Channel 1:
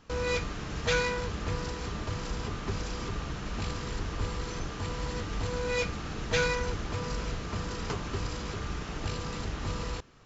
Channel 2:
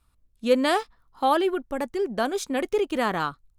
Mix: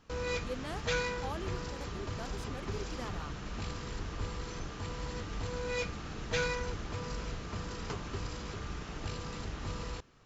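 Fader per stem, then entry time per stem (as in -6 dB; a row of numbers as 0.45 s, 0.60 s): -5.0 dB, -20.0 dB; 0.00 s, 0.00 s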